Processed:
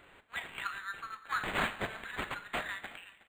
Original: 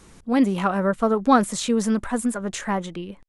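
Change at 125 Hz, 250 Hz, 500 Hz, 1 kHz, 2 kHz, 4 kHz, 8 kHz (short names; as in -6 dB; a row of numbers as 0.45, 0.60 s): -18.0, -27.5, -20.5, -14.0, -3.0, -7.5, -21.5 dB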